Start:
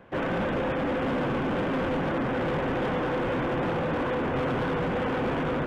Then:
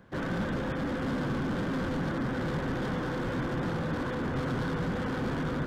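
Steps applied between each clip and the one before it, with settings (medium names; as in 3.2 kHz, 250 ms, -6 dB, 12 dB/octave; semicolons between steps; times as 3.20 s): FFT filter 190 Hz 0 dB, 510 Hz -8 dB, 730 Hz -9 dB, 1.6 kHz -3 dB, 2.6 kHz -10 dB, 4.3 kHz +4 dB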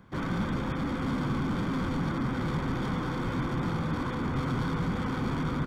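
comb 0.9 ms, depth 43%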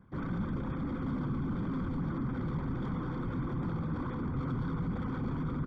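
resonances exaggerated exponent 1.5; trim -4 dB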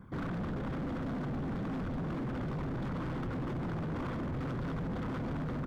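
in parallel at +1.5 dB: peak limiter -34.5 dBFS, peak gain reduction 9.5 dB; on the sum: hard clipper -34 dBFS, distortion -8 dB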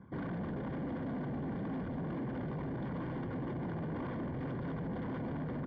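distance through air 290 m; comb of notches 1.3 kHz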